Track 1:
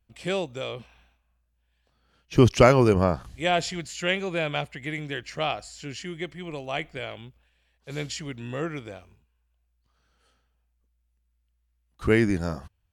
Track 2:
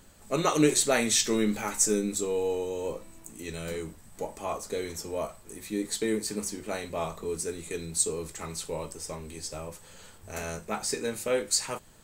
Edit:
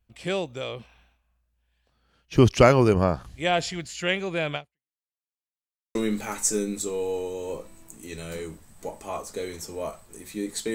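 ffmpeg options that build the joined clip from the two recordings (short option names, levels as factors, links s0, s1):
-filter_complex "[0:a]apad=whole_dur=10.74,atrim=end=10.74,asplit=2[s0][s1];[s0]atrim=end=4.98,asetpts=PTS-STARTPTS,afade=t=out:st=4.55:d=0.43:c=exp[s2];[s1]atrim=start=4.98:end=5.95,asetpts=PTS-STARTPTS,volume=0[s3];[1:a]atrim=start=1.31:end=6.1,asetpts=PTS-STARTPTS,afade=t=in:d=0.004:c=hsin[s4];[s2][s3][s4]concat=n=3:v=0:a=1"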